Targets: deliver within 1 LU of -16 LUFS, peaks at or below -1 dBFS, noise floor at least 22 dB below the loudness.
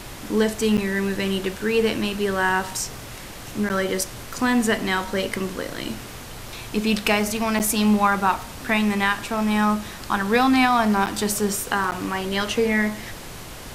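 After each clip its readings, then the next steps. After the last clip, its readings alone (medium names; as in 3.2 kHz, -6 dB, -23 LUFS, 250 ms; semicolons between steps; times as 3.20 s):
dropouts 5; longest dropout 8.8 ms; noise floor -38 dBFS; noise floor target -45 dBFS; loudness -22.5 LUFS; peak level -6.0 dBFS; loudness target -16.0 LUFS
-> interpolate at 0.77/3.69/7.59/11.06/11.91 s, 8.8 ms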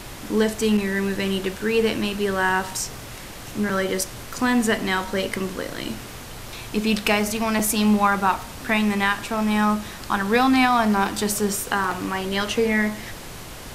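dropouts 0; noise floor -38 dBFS; noise floor target -45 dBFS
-> noise print and reduce 7 dB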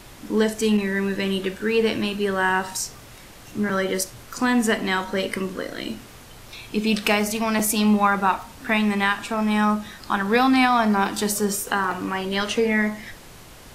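noise floor -44 dBFS; noise floor target -45 dBFS
-> noise print and reduce 6 dB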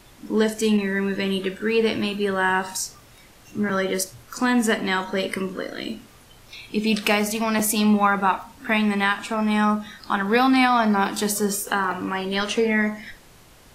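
noise floor -50 dBFS; loudness -22.5 LUFS; peak level -6.0 dBFS; loudness target -16.0 LUFS
-> trim +6.5 dB; peak limiter -1 dBFS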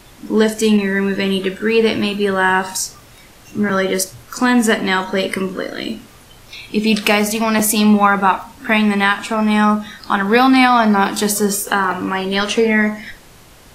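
loudness -16.0 LUFS; peak level -1.0 dBFS; noise floor -44 dBFS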